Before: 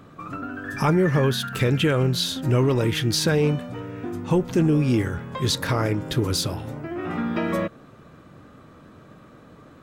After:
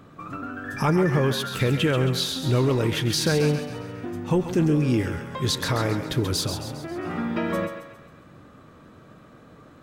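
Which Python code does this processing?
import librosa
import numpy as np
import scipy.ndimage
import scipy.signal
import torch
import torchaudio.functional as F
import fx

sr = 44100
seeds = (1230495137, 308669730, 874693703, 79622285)

y = fx.echo_thinned(x, sr, ms=135, feedback_pct=49, hz=460.0, wet_db=-7.5)
y = y * librosa.db_to_amplitude(-1.5)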